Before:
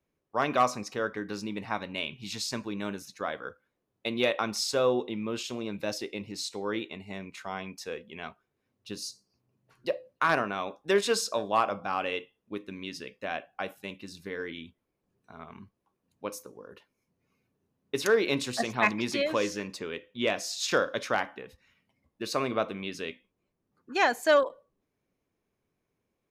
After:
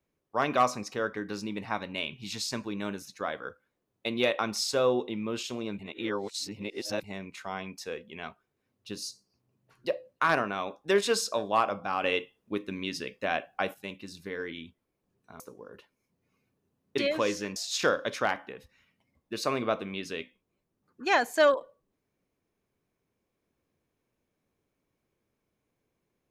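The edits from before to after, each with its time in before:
0:05.79–0:07.04: reverse
0:12.04–0:13.74: clip gain +4.5 dB
0:15.40–0:16.38: remove
0:17.96–0:19.13: remove
0:19.71–0:20.45: remove

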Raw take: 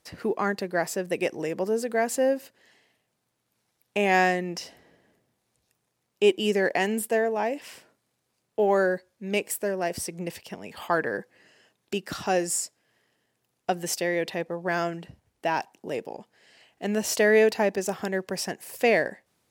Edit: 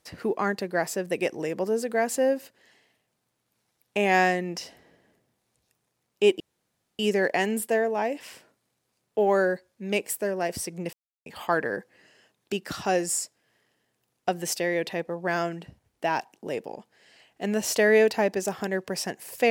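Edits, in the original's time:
0:06.40: splice in room tone 0.59 s
0:10.34–0:10.67: silence

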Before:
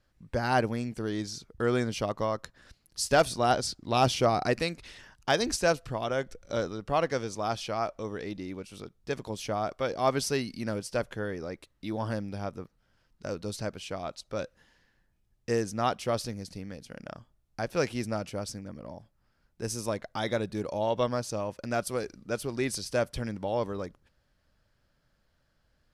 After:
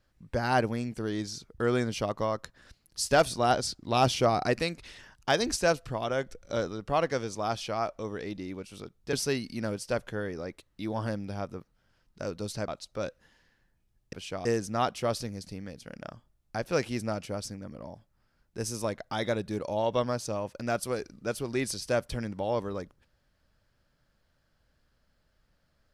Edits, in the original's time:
0:09.13–0:10.17: remove
0:13.72–0:14.04: move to 0:15.49

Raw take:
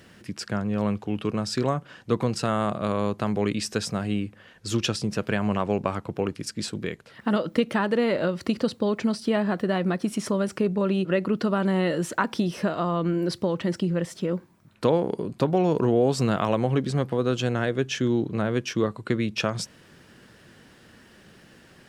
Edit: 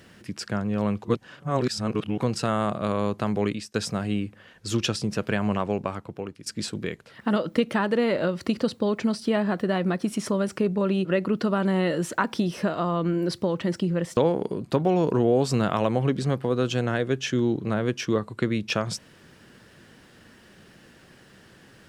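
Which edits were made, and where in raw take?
0:01.05–0:02.20: reverse
0:03.46–0:03.74: fade out
0:05.50–0:06.46: fade out, to −12 dB
0:14.17–0:14.85: remove

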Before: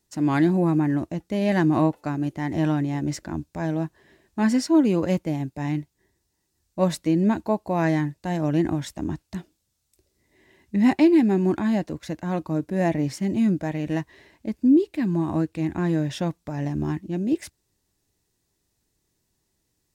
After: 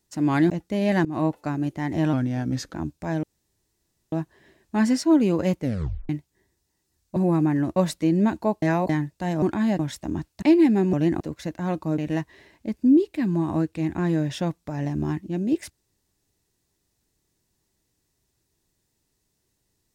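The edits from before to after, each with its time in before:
0:00.50–0:01.10: move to 0:06.80
0:01.65–0:01.93: fade in, from −20 dB
0:02.73–0:03.26: play speed 88%
0:03.76: splice in room tone 0.89 s
0:05.24: tape stop 0.49 s
0:07.66–0:07.93: reverse
0:08.46–0:08.73: swap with 0:11.47–0:11.84
0:09.36–0:10.96: remove
0:12.62–0:13.78: remove

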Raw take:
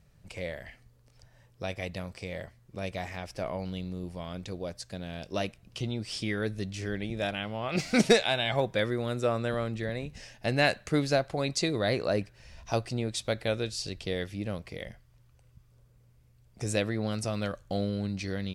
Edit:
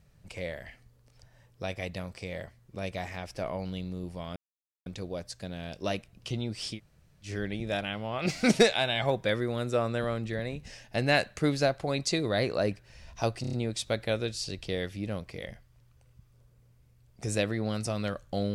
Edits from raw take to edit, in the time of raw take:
0:04.36: splice in silence 0.50 s
0:06.25–0:06.76: fill with room tone, crossfade 0.10 s
0:12.91: stutter 0.03 s, 5 plays

